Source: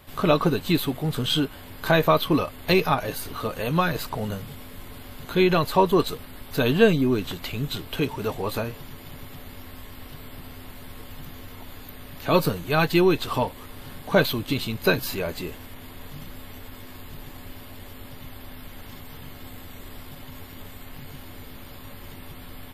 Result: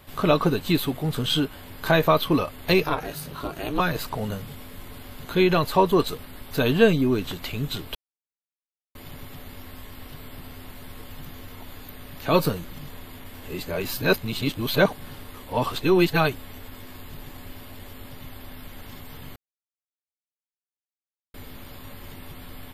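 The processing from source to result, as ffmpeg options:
-filter_complex "[0:a]asettb=1/sr,asplit=3[s0][s1][s2];[s0]atrim=end=2.834[s3];[s1]atrim=start=2.83:end=3.8,asetpts=PTS-STARTPTS,afade=t=in:d=0.004:c=qsin,afade=t=out:st=0.966:d=0.004:c=qsin,aeval=exprs='val(0)*sin(2*PI*150*n/s)':c=same[s4];[s2]atrim=start=3.796[s5];[s3][s4]acrossfade=d=0.004:c1=hsin:c2=qsin[s6];[s6][s5]acrossfade=d=0.004:c1=qsin:c2=hsin,asplit=7[s7][s8][s9][s10][s11][s12][s13];[s7]atrim=end=7.95,asetpts=PTS-STARTPTS,afade=t=out:st=7.946:d=0.004:c=hsin[s14];[s8]atrim=start=7.95:end=8.95,asetpts=PTS-STARTPTS,volume=0[s15];[s9]atrim=start=8.95:end=12.652,asetpts=PTS-STARTPTS,afade=t=in:d=0.004:c=hsin[s16];[s10]atrim=start=12.648:end=16.352,asetpts=PTS-STARTPTS,areverse[s17];[s11]atrim=start=16.348:end=19.36,asetpts=PTS-STARTPTS,afade=t=out:st=3.008:d=0.004:c=hsin[s18];[s12]atrim=start=19.36:end=21.34,asetpts=PTS-STARTPTS,volume=0[s19];[s13]atrim=start=21.34,asetpts=PTS-STARTPTS,afade=t=in:d=0.004:c=hsin[s20];[s14][s15][s16]concat=n=3:v=0:a=1[s21];[s21][s17]acrossfade=d=0.004:c1=hsin:c2=hsin[s22];[s18][s19][s20]concat=n=3:v=0:a=1[s23];[s22][s23]acrossfade=d=0.004:c1=hsin:c2=hsin"

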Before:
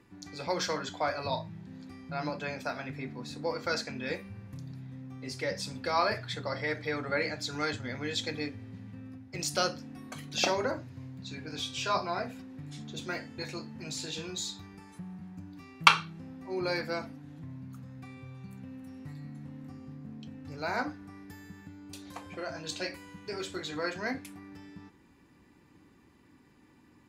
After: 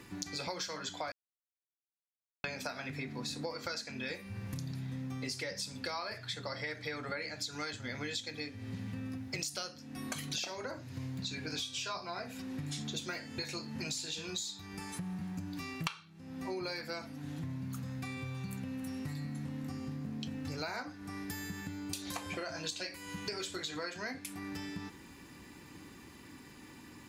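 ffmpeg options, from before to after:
-filter_complex "[0:a]asplit=3[s0][s1][s2];[s0]atrim=end=1.12,asetpts=PTS-STARTPTS,afade=t=out:st=1.116:d=0.004:c=hsin[s3];[s1]atrim=start=1.12:end=2.44,asetpts=PTS-STARTPTS,volume=0[s4];[s2]atrim=start=2.44,asetpts=PTS-STARTPTS,afade=t=in:d=0.004:c=hsin[s5];[s3][s4][s5]concat=n=3:v=0:a=1,highshelf=f=2400:g=10,acompressor=threshold=0.00708:ratio=16,volume=2.24"

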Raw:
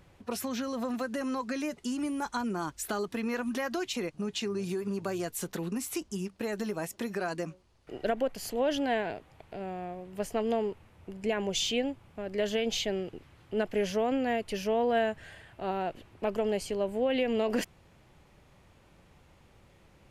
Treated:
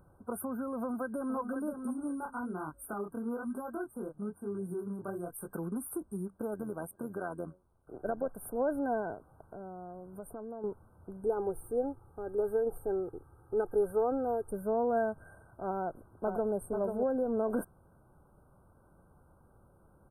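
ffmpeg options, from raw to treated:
-filter_complex "[0:a]asplit=2[s0][s1];[s1]afade=t=in:st=0.76:d=0.01,afade=t=out:st=1.37:d=0.01,aecho=0:1:530|1060|1590:0.421697|0.105424|0.026356[s2];[s0][s2]amix=inputs=2:normalize=0,asplit=3[s3][s4][s5];[s3]afade=t=out:st=1.92:d=0.02[s6];[s4]flanger=delay=19.5:depth=7.4:speed=1.1,afade=t=in:st=1.92:d=0.02,afade=t=out:st=5.46:d=0.02[s7];[s5]afade=t=in:st=5.46:d=0.02[s8];[s6][s7][s8]amix=inputs=3:normalize=0,asettb=1/sr,asplit=3[s9][s10][s11];[s9]atrim=end=6.544[s12];[s10]atrim=start=6.54:end=8.29,asetpts=PTS-STARTPTS,afade=t=in:d=0.004:c=qsin,afade=t=out:st=1.746:d=0.004:c=qsin,tremolo=f=87:d=0.519[s13];[s11]atrim=start=8.286[s14];[s12][s13]acrossfade=d=0.004:c1=hsin:c2=qsin[s15];[s15][s14]acrossfade=d=0.004:c1=qsin:c2=hsin,asettb=1/sr,asplit=3[s16][s17][s18];[s16]atrim=end=9.144[s19];[s17]atrim=start=9.14:end=10.64,asetpts=PTS-STARTPTS,afade=t=in:d=0.004:c=qsin,afade=t=out:st=1.496:d=0.004:c=qsin,acompressor=threshold=0.0126:ratio=4:attack=3.2:release=140:knee=1:detection=peak[s20];[s18]atrim=start=10.636[s21];[s19][s20]acrossfade=d=0.004:c1=hsin:c2=qsin[s22];[s22][s21]acrossfade=d=0.004:c1=qsin:c2=hsin,asettb=1/sr,asplit=3[s23][s24][s25];[s23]atrim=end=11.244[s26];[s24]atrim=start=11.24:end=14.51,asetpts=PTS-STARTPTS,afade=t=in:d=0.004:c=qsin,afade=t=out:st=3.266:d=0.004:c=qsin,aecho=1:1:2.4:0.65,atrim=end_sample=144207[s27];[s25]atrim=start=14.506[s28];[s26][s27]acrossfade=d=0.004:c1=hsin:c2=qsin[s29];[s29][s28]acrossfade=d=0.004:c1=qsin:c2=hsin,asplit=2[s30][s31];[s31]afade=t=in:st=15.77:d=0.01,afade=t=out:st=16.54:d=0.01,aecho=0:1:490|980:0.530884|0.0530884[s32];[s30][s32]amix=inputs=2:normalize=0,afftfilt=real='re*(1-between(b*sr/4096,1600,8400))':imag='im*(1-between(b*sr/4096,1600,8400))':win_size=4096:overlap=0.75,volume=0.75"

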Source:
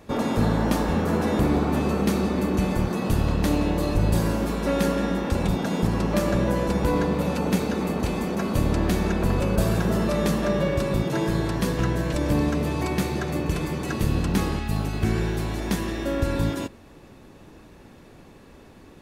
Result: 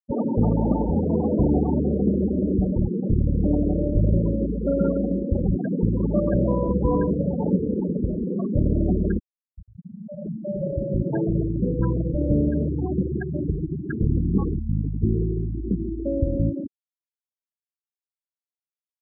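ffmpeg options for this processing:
-filter_complex "[0:a]asplit=2[s0][s1];[s1]afade=t=in:st=6.82:d=0.01,afade=t=out:st=7.29:d=0.01,aecho=0:1:240|480|720|960|1200|1440|1680|1920|2160:0.188365|0.131855|0.0922988|0.0646092|0.0452264|0.0316585|0.0221609|0.0155127|0.0108589[s2];[s0][s2]amix=inputs=2:normalize=0,asettb=1/sr,asplit=3[s3][s4][s5];[s3]atrim=end=13.224[s6];[s4]atrim=start=13.22:end=13.85,asetpts=PTS-STARTPTS,afade=t=in:d=0.004:c=qsin,afade=t=out:st=0.626:d=0.004:c=qsin,bandreject=f=60:t=h:w=6,bandreject=f=120:t=h:w=6,bandreject=f=180:t=h:w=6,bandreject=f=240:t=h:w=6,bandreject=f=300:t=h:w=6,bandreject=f=360:t=h:w=6,bandreject=f=420:t=h:w=6,bandreject=f=480:t=h:w=6,bandreject=f=540:t=h:w=6,bandreject=f=600:t=h:w=6[s7];[s5]atrim=start=13.846[s8];[s6][s7]acrossfade=d=0.004:c1=hsin:c2=qsin[s9];[s9][s8]acrossfade=d=0.004:c1=qsin:c2=hsin,asplit=2[s10][s11];[s10]atrim=end=9.19,asetpts=PTS-STARTPTS,afade=t=out:st=9.186:d=0.004:c=hsin:silence=0.141254[s12];[s11]atrim=start=9.19,asetpts=PTS-STARTPTS,afade=t=in:d=1.96:c=qua:silence=0.141254[s13];[s12][s13]concat=n=2:v=0:a=1,afftfilt=real='re*gte(hypot(re,im),0.158)':imag='im*gte(hypot(re,im),0.158)':win_size=1024:overlap=0.75,volume=1.26"

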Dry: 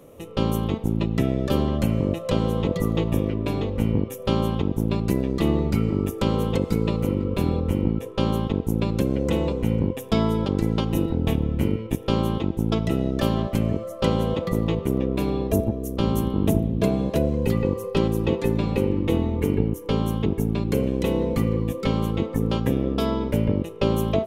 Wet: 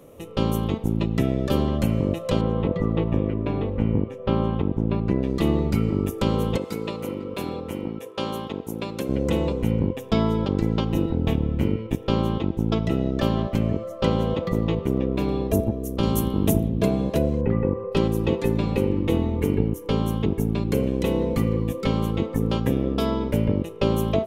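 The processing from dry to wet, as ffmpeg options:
-filter_complex "[0:a]asettb=1/sr,asplit=3[s0][s1][s2];[s0]atrim=end=2.414[s3];[s1]atrim=start=2.41:end=5.23,asetpts=PTS-STARTPTS,afade=t=in:d=0.004:c=qsin,afade=t=out:st=2.816:d=0.004:c=qsin,lowpass=2300[s4];[s2]atrim=start=5.226[s5];[s3][s4]acrossfade=d=0.004:c1=hsin:c2=qsin[s6];[s6][s5]acrossfade=d=0.004:c1=qsin:c2=hsin,asettb=1/sr,asplit=3[s7][s8][s9];[s7]atrim=end=6.574[s10];[s8]atrim=start=6.57:end=9.09,asetpts=PTS-STARTPTS,afade=t=in:d=0.004:c=qsin,afade=t=out:st=2.516:d=0.004:c=qsin,highpass=f=490:p=1[s11];[s9]atrim=start=9.086[s12];[s10][s11]acrossfade=d=0.004:c1=hsin:c2=qsin[s13];[s13][s12]acrossfade=d=0.004:c1=qsin:c2=hsin,asettb=1/sr,asplit=3[s14][s15][s16];[s14]atrim=end=9.714[s17];[s15]atrim=start=9.71:end=15.29,asetpts=PTS-STARTPTS,afade=t=in:d=0.004:c=qsin,afade=t=out:st=5.576:d=0.004:c=qsin,equalizer=f=11000:t=o:w=1:g=-10[s18];[s16]atrim=start=15.286[s19];[s17][s18]acrossfade=d=0.004:c1=hsin:c2=qsin[s20];[s20][s19]acrossfade=d=0.004:c1=qsin:c2=hsin,asettb=1/sr,asplit=3[s21][s22][s23];[s21]atrim=end=16.034[s24];[s22]atrim=start=16.03:end=16.69,asetpts=PTS-STARTPTS,afade=t=in:d=0.004:c=qsin,afade=t=out:st=0.656:d=0.004:c=qsin,highshelf=f=4300:g=8[s25];[s23]atrim=start=16.686[s26];[s24][s25]acrossfade=d=0.004:c1=hsin:c2=qsin[s27];[s27][s26]acrossfade=d=0.004:c1=qsin:c2=hsin,asettb=1/sr,asplit=3[s28][s29][s30];[s28]atrim=end=17.414[s31];[s29]atrim=start=17.41:end=17.92,asetpts=PTS-STARTPTS,afade=t=in:d=0.004:c=qsin,afade=t=out:st=0.506:d=0.004:c=qsin,lowpass=f=2000:w=0.5412,lowpass=f=2000:w=1.3066[s32];[s30]atrim=start=17.916[s33];[s31][s32]acrossfade=d=0.004:c1=hsin:c2=qsin[s34];[s34][s33]acrossfade=d=0.004:c1=qsin:c2=hsin"

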